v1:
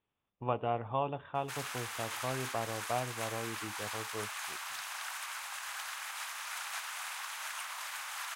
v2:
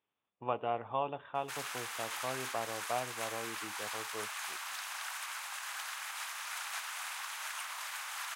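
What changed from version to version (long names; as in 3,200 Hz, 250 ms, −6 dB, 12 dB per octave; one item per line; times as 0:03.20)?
master: add high-pass filter 350 Hz 6 dB per octave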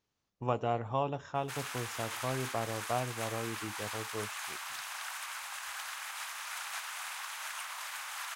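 speech: remove Chebyshev low-pass with heavy ripple 3,600 Hz, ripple 3 dB
master: remove high-pass filter 350 Hz 6 dB per octave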